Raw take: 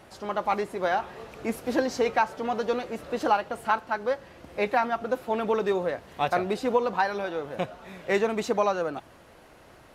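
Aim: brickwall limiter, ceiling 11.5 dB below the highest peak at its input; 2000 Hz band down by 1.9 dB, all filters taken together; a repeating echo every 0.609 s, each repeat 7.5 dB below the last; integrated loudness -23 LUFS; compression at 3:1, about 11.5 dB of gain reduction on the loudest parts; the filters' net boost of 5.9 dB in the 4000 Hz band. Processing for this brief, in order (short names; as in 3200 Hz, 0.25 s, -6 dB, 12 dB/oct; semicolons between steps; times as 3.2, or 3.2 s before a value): bell 2000 Hz -4.5 dB; bell 4000 Hz +8.5 dB; compressor 3:1, threshold -35 dBFS; limiter -33 dBFS; feedback echo 0.609 s, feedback 42%, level -7.5 dB; gain +19 dB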